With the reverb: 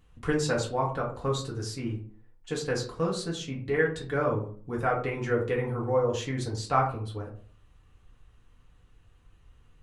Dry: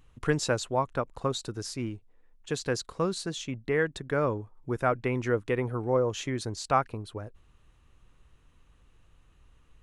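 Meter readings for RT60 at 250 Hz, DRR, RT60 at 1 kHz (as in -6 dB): 0.60 s, -3.0 dB, 0.40 s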